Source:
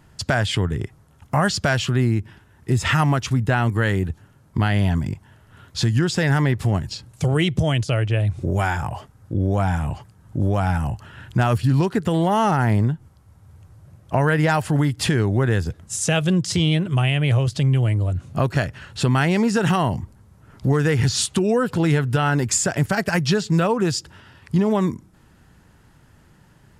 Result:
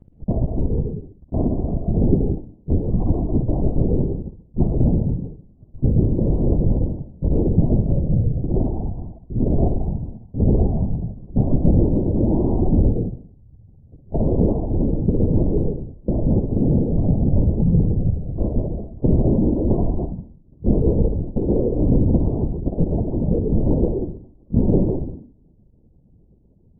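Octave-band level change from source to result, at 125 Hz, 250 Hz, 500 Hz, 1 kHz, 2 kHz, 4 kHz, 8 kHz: -0.5 dB, +2.0 dB, -0.5 dB, -13.5 dB, under -40 dB, under -40 dB, under -40 dB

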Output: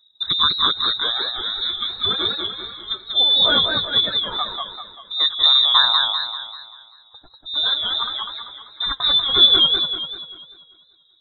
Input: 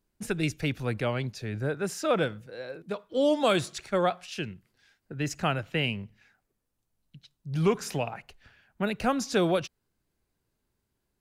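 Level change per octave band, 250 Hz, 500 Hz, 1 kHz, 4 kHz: -7.0 dB, -6.0 dB, +6.5 dB, +25.5 dB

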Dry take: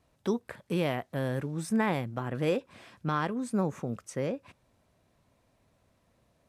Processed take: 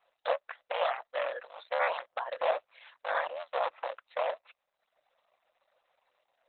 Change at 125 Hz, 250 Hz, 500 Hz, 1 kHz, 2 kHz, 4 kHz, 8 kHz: under -40 dB, under -35 dB, 0.0 dB, +3.0 dB, +2.0 dB, +1.5 dB, under -30 dB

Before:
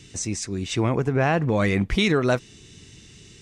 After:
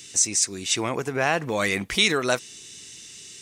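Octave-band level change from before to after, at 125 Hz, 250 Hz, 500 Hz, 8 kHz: -11.0 dB, -7.0 dB, -3.0 dB, +10.5 dB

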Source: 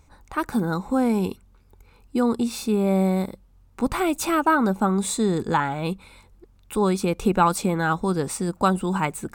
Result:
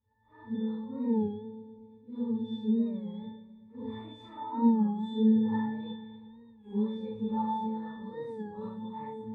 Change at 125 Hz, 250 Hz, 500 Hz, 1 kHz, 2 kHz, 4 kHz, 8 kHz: -14.0 dB, -6.0 dB, -13.5 dB, -14.0 dB, under -20 dB, -15.0 dB, under -40 dB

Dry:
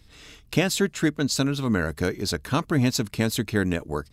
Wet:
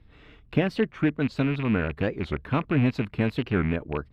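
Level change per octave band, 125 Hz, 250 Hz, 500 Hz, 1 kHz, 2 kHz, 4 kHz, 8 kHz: 0.0 dB, -1.0 dB, -1.5 dB, -2.0 dB, -3.0 dB, -11.5 dB, under -25 dB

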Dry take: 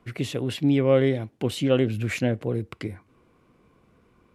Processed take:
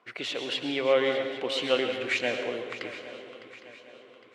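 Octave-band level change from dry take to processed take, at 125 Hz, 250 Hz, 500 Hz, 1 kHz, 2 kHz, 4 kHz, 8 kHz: -23.5 dB, -11.0 dB, -2.5 dB, +2.5 dB, +4.0 dB, +5.0 dB, -4.0 dB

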